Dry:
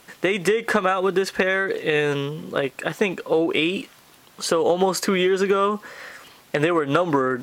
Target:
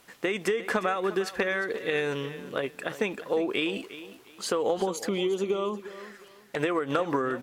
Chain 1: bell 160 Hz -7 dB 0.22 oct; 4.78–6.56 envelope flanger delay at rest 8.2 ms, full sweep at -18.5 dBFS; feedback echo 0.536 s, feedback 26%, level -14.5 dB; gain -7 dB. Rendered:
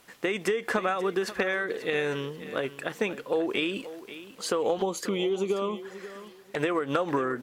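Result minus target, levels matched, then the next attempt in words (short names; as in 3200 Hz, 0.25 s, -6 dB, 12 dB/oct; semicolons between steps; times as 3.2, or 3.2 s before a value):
echo 0.181 s late
bell 160 Hz -7 dB 0.22 oct; 4.78–6.56 envelope flanger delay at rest 8.2 ms, full sweep at -18.5 dBFS; feedback echo 0.355 s, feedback 26%, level -14.5 dB; gain -7 dB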